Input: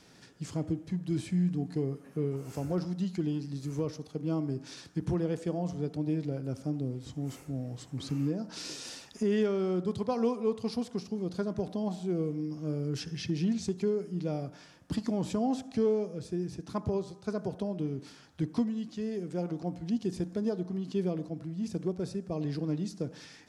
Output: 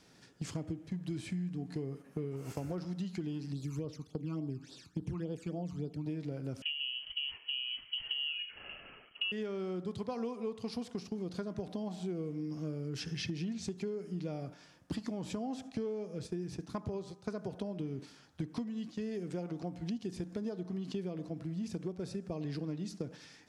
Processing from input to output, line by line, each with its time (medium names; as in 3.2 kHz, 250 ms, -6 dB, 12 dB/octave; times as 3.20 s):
3.52–6.06 s: phase shifter stages 12, 3.5 Hz, lowest notch 540–2200 Hz
6.62–9.32 s: frequency inversion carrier 3.1 kHz
whole clip: gate -42 dBFS, range -8 dB; dynamic bell 2.4 kHz, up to +4 dB, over -57 dBFS, Q 0.89; compression 6:1, threshold -39 dBFS; trim +3.5 dB